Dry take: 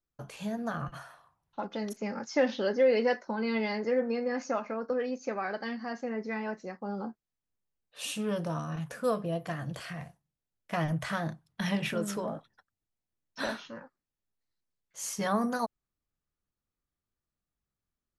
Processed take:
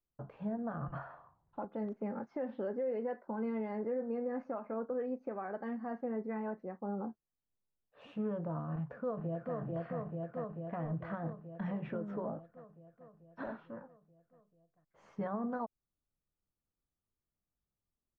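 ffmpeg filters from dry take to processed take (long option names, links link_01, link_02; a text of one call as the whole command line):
ffmpeg -i in.wav -filter_complex "[0:a]asettb=1/sr,asplit=3[link_01][link_02][link_03];[link_01]atrim=end=0.904[link_04];[link_02]atrim=start=0.9:end=1.65,asetpts=PTS-STARTPTS,afade=type=in:duration=0.004:curve=qsin,afade=type=out:start_time=0.746:duration=0.004:curve=qsin,acontrast=83[link_05];[link_03]atrim=start=1.646[link_06];[link_04][link_05]acrossfade=duration=0.004:curve1=hsin:curve2=qsin[link_07];[link_07][link_06]acrossfade=duration=0.004:curve1=qsin:curve2=hsin,asplit=2[link_08][link_09];[link_09]afade=type=in:start_time=8.73:duration=0.01,afade=type=out:start_time=9.56:duration=0.01,aecho=0:1:440|880|1320|1760|2200|2640|3080|3520|3960|4400|4840|5280:0.749894|0.524926|0.367448|0.257214|0.18005|0.126035|0.0882243|0.061757|0.0432299|0.0302609|0.0211827|0.0148279[link_10];[link_08][link_10]amix=inputs=2:normalize=0,aemphasis=mode=reproduction:type=75kf,alimiter=level_in=2.5dB:limit=-24dB:level=0:latency=1:release=230,volume=-2.5dB,lowpass=1200,volume=-2dB" out.wav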